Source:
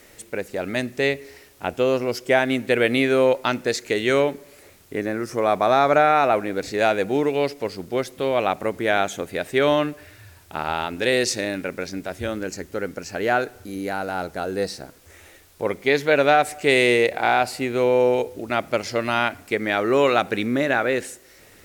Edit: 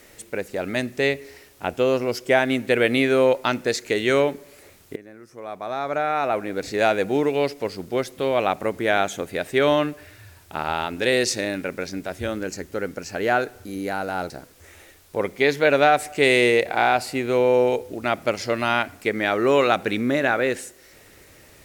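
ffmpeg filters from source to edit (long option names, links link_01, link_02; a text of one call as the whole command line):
ffmpeg -i in.wav -filter_complex "[0:a]asplit=3[link_01][link_02][link_03];[link_01]atrim=end=4.96,asetpts=PTS-STARTPTS,afade=type=out:start_time=4.956:duration=0.004:curve=hsin:silence=0.112202[link_04];[link_02]atrim=start=4.96:end=14.302,asetpts=PTS-STARTPTS,afade=type=in:duration=1.78:curve=qua:silence=0.112202[link_05];[link_03]atrim=start=14.758[link_06];[link_04][link_05]concat=n=2:v=0:a=1[link_07];[link_07][link_06]acrossfade=duration=0.004:curve1=hsin:curve2=hsin" out.wav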